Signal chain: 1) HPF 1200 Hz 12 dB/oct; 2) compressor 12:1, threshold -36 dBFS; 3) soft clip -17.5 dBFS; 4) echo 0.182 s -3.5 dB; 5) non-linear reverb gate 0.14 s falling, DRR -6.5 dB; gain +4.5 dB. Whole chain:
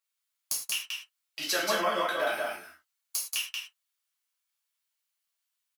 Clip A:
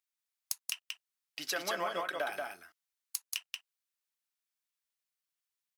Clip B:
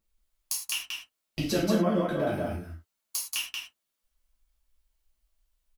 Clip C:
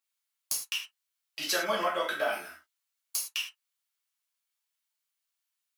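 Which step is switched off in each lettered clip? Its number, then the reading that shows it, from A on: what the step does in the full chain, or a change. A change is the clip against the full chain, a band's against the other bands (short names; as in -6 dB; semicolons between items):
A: 5, echo-to-direct 8.5 dB to -3.5 dB; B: 1, 125 Hz band +24.0 dB; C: 4, echo-to-direct 8.5 dB to 6.5 dB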